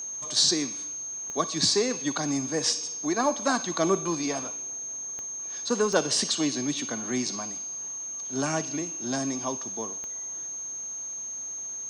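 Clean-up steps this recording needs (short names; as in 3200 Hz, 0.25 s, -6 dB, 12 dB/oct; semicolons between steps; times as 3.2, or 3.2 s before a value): de-click; notch 6400 Hz, Q 30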